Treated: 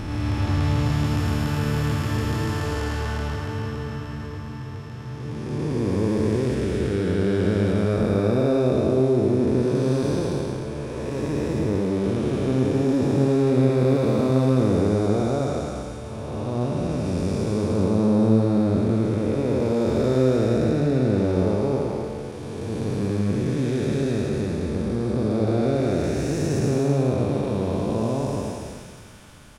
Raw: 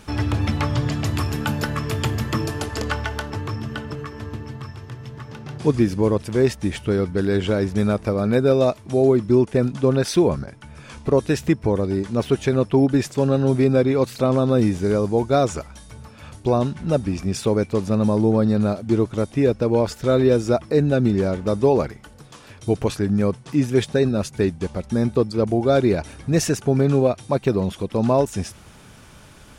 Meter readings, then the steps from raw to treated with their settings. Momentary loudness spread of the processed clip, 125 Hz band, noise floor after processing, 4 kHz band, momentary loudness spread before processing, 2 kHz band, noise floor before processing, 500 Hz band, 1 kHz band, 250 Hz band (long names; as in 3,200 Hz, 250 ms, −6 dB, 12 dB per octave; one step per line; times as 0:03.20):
11 LU, 0.0 dB, −34 dBFS, −4.0 dB, 12 LU, −3.5 dB, −46 dBFS, −3.0 dB, −4.0 dB, −1.0 dB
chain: spectrum smeared in time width 681 ms
single-tap delay 108 ms −3.5 dB